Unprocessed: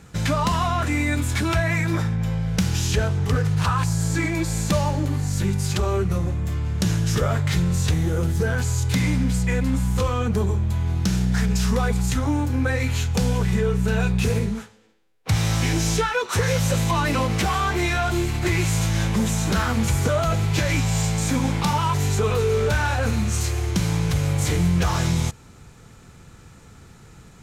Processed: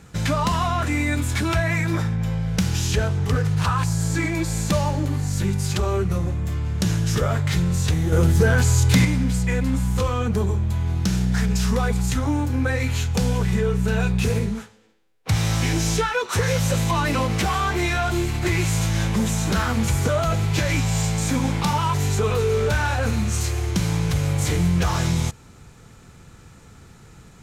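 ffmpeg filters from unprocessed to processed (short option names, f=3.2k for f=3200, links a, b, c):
-filter_complex "[0:a]asettb=1/sr,asplit=3[a][b][c];[a]atrim=end=8.124[d];[b]atrim=start=8.12:end=9.05,asetpts=PTS-STARTPTS,afade=t=in:d=0.004:c=qsin,afade=t=out:st=0.926:d=0.004:c=qsin,acontrast=45[e];[c]atrim=start=9.046[f];[d][e]acrossfade=d=0.004:c1=hsin:c2=qsin[g];[g][f]acrossfade=d=0.004:c1=qsin:c2=hsin"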